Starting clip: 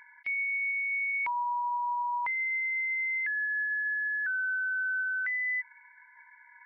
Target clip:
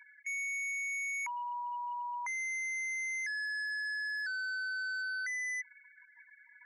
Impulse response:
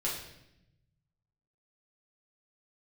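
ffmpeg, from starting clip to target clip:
-af "highpass=1400,volume=35.5dB,asoftclip=hard,volume=-35.5dB,afftfilt=real='re*gte(hypot(re,im),0.00447)':imag='im*gte(hypot(re,im),0.00447)':win_size=1024:overlap=0.75"

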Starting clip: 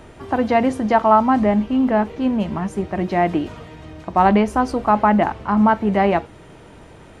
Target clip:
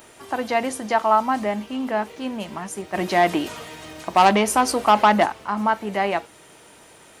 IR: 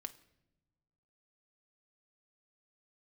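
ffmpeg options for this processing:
-filter_complex "[0:a]asplit=3[link_01][link_02][link_03];[link_01]afade=type=out:start_time=2.93:duration=0.02[link_04];[link_02]acontrast=72,afade=type=in:start_time=2.93:duration=0.02,afade=type=out:start_time=5.25:duration=0.02[link_05];[link_03]afade=type=in:start_time=5.25:duration=0.02[link_06];[link_04][link_05][link_06]amix=inputs=3:normalize=0,aemphasis=mode=production:type=riaa,volume=-3.5dB"

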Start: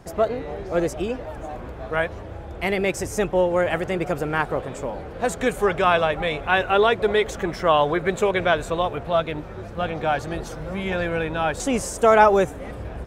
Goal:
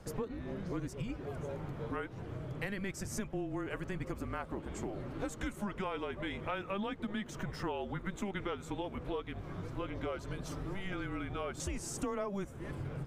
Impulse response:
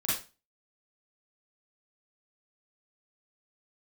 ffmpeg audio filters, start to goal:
-af "afreqshift=-200,acompressor=threshold=-30dB:ratio=6,volume=-5.5dB"

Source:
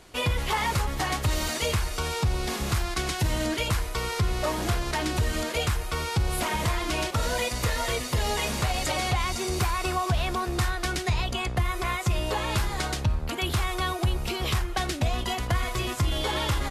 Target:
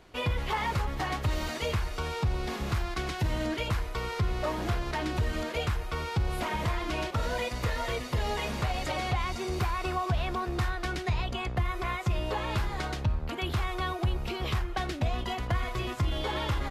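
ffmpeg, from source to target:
ffmpeg -i in.wav -af "equalizer=frequency=9700:width_type=o:width=1.7:gain=-12,volume=-3dB" out.wav

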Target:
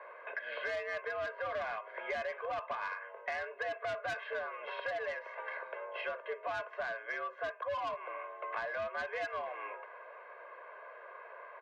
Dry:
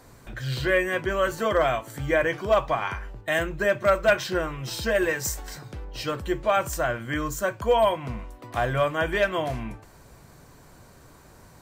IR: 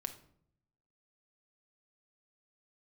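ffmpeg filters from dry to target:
-filter_complex "[0:a]asplit=2[link_01][link_02];[link_02]asoftclip=type=hard:threshold=-23.5dB,volume=-6dB[link_03];[link_01][link_03]amix=inputs=2:normalize=0,highpass=frequency=460:width_type=q:width=0.5412,highpass=frequency=460:width_type=q:width=1.307,lowpass=frequency=2400:width_type=q:width=0.5176,lowpass=frequency=2400:width_type=q:width=0.7071,lowpass=frequency=2400:width_type=q:width=1.932,afreqshift=82,aecho=1:1:1.9:0.81,asoftclip=type=tanh:threshold=-17.5dB,acompressor=threshold=-37dB:ratio=6"

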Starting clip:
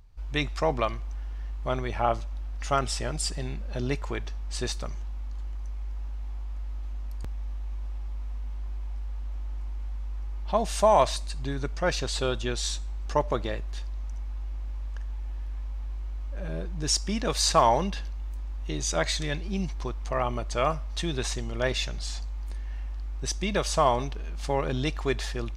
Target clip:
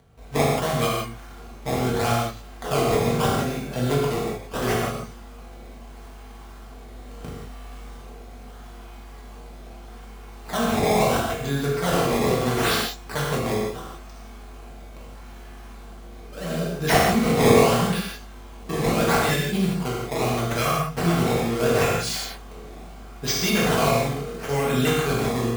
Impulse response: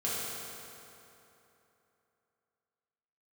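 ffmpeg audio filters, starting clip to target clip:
-filter_complex "[0:a]highpass=120,acrossover=split=240|1400[link_01][link_02][link_03];[link_02]acompressor=threshold=-37dB:ratio=6[link_04];[link_01][link_04][link_03]amix=inputs=3:normalize=0,acrusher=samples=17:mix=1:aa=0.000001:lfo=1:lforange=27.2:lforate=0.76,asplit=2[link_05][link_06];[link_06]aeval=exprs='(mod(15.8*val(0)+1,2)-1)/15.8':channel_layout=same,volume=-11dB[link_07];[link_05][link_07]amix=inputs=2:normalize=0,asettb=1/sr,asplit=3[link_08][link_09][link_10];[link_08]atrim=end=6.884[link_11];[link_09]atrim=start=6.88:end=7.95,asetpts=PTS-STARTPTS,afade=type=in:duration=0.004:curve=qsin,afade=type=out:start_time=1.066:duration=0.004:curve=qsin,asplit=2[link_12][link_13];[link_13]adelay=36,volume=-3.5dB[link_14];[link_12][link_14]amix=inputs=2:normalize=0,atrim=end_sample=47187[link_15];[link_10]atrim=start=7.946[link_16];[link_11][link_15]acrossfade=duration=0.004:curve1=hsin:curve2=qsin[link_17];[link_17][link_16]acrossfade=duration=0.004:curve1=qsin:curve2=hsin[link_18];[1:a]atrim=start_sample=2205,afade=type=out:start_time=0.24:duration=0.01,atrim=end_sample=11025[link_19];[link_18][link_19]afir=irnorm=-1:irlink=0,volume=4dB"

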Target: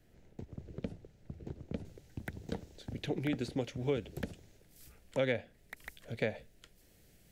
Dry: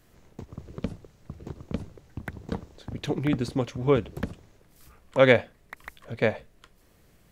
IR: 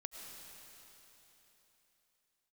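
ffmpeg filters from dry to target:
-filter_complex "[0:a]asetnsamples=nb_out_samples=441:pad=0,asendcmd='1.85 highshelf g 5',highshelf=frequency=3200:gain=-7.5,acrossover=split=310|3200[link_01][link_02][link_03];[link_01]acompressor=threshold=-33dB:ratio=4[link_04];[link_02]acompressor=threshold=-26dB:ratio=4[link_05];[link_03]acompressor=threshold=-48dB:ratio=4[link_06];[link_04][link_05][link_06]amix=inputs=3:normalize=0,equalizer=frequency=1100:width=3:gain=-14.5,volume=-4.5dB"

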